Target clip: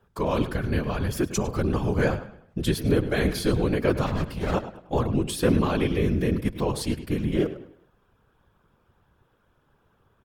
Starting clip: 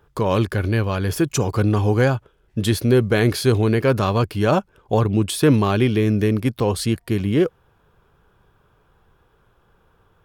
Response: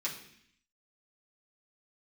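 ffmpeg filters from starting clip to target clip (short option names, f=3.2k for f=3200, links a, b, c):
-filter_complex "[0:a]asettb=1/sr,asplit=3[a][b][c];[a]atrim=end=4.064[d];[b]atrim=start=4.06:end=4.54,asetpts=PTS-STARTPTS,afade=t=in:d=0.004:c=qsin,afade=t=out:st=0.476:d=0.004:c=qsin,aeval=exprs='clip(val(0),-1,0.0501)':c=same[e];[c]atrim=start=4.536[f];[d][e]acrossfade=d=0.004:c1=hsin:c2=qsin[g];[g][f]acrossfade=d=0.004:c1=qsin:c2=hsin,asplit=2[h][i];[i]adelay=103,lowpass=f=4.8k:p=1,volume=-12.5dB,asplit=2[j][k];[k]adelay=103,lowpass=f=4.8k:p=1,volume=0.37,asplit=2[l][m];[m]adelay=103,lowpass=f=4.8k:p=1,volume=0.37,asplit=2[n][o];[o]adelay=103,lowpass=f=4.8k:p=1,volume=0.37[p];[h][j][l][n][p]amix=inputs=5:normalize=0,afftfilt=real='hypot(re,im)*cos(2*PI*random(0))':imag='hypot(re,im)*sin(2*PI*random(1))':win_size=512:overlap=0.75"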